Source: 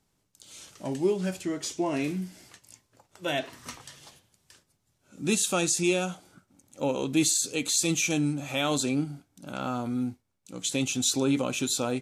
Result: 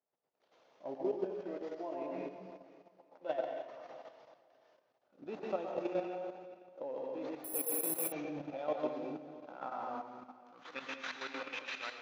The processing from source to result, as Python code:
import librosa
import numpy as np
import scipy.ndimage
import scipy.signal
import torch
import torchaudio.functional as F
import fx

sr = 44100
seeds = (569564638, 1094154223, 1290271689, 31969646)

p1 = fx.cvsd(x, sr, bps=32000)
p2 = fx.low_shelf(p1, sr, hz=180.0, db=-9.0)
p3 = fx.rider(p2, sr, range_db=4, speed_s=2.0)
p4 = p2 + F.gain(torch.from_numpy(p3), 1.0).numpy()
p5 = fx.tremolo_shape(p4, sr, shape='saw_up', hz=6.3, depth_pct=70)
p6 = fx.filter_sweep_bandpass(p5, sr, from_hz=590.0, to_hz=2000.0, start_s=8.78, end_s=11.72, q=1.9)
p7 = p6 + fx.echo_feedback(p6, sr, ms=514, feedback_pct=24, wet_db=-17.0, dry=0)
p8 = fx.rev_plate(p7, sr, seeds[0], rt60_s=0.98, hf_ratio=0.95, predelay_ms=105, drr_db=-1.5)
p9 = fx.level_steps(p8, sr, step_db=9)
p10 = fx.resample_bad(p9, sr, factor=4, down='none', up='zero_stuff', at=(7.44, 8.12))
y = F.gain(torch.from_numpy(p10), -4.5).numpy()